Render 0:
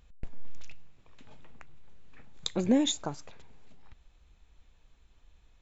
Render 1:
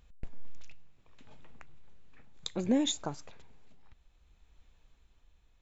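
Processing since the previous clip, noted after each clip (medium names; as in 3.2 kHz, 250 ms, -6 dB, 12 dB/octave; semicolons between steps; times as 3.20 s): tremolo 0.64 Hz, depth 35%; trim -1.5 dB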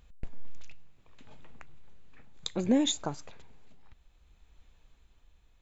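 band-stop 5.5 kHz, Q 23; trim +2.5 dB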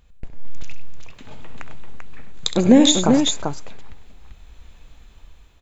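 level rider gain up to 10.5 dB; multi-tap echo 66/99/391 ms -12/-12/-4.5 dB; trim +3 dB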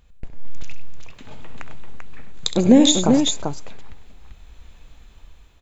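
dynamic bell 1.5 kHz, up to -5 dB, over -39 dBFS, Q 1.1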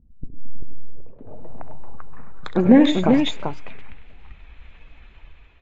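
coarse spectral quantiser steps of 15 dB; low-pass sweep 250 Hz -> 2.4 kHz, 0.21–3.19 s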